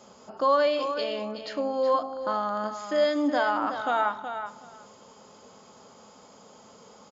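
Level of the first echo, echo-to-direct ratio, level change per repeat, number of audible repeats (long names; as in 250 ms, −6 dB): −9.0 dB, −9.0 dB, −16.5 dB, 2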